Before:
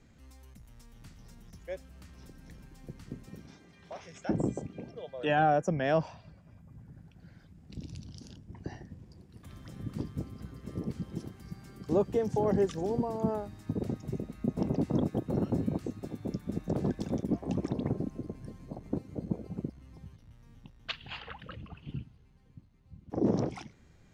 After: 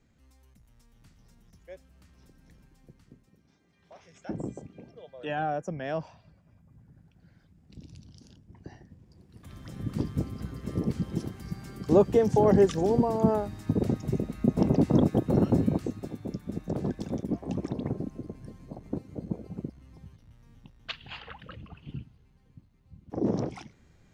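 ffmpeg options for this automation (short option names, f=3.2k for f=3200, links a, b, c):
-af "volume=17dB,afade=t=out:st=2.62:d=0.75:silence=0.316228,afade=t=in:st=3.37:d=0.94:silence=0.266073,afade=t=in:st=9.05:d=1.09:silence=0.251189,afade=t=out:st=15.51:d=0.75:silence=0.446684"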